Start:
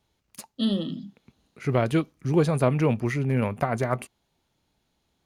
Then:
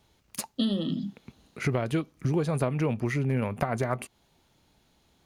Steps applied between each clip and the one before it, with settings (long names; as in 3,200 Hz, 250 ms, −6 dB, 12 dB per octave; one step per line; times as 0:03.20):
downward compressor 6 to 1, threshold −32 dBFS, peak gain reduction 15.5 dB
level +7.5 dB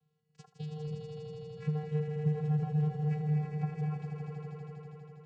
channel vocoder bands 8, square 152 Hz
echo that builds up and dies away 81 ms, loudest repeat 5, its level −6.5 dB
level −5.5 dB